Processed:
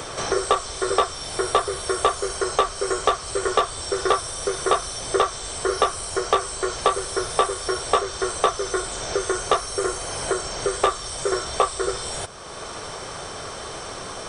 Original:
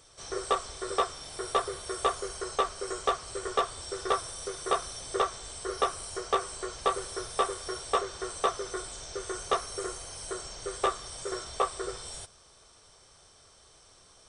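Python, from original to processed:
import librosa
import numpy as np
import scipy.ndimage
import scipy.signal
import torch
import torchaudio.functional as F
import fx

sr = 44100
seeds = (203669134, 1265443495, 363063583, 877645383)

y = fx.band_squash(x, sr, depth_pct=70)
y = F.gain(torch.from_numpy(y), 9.0).numpy()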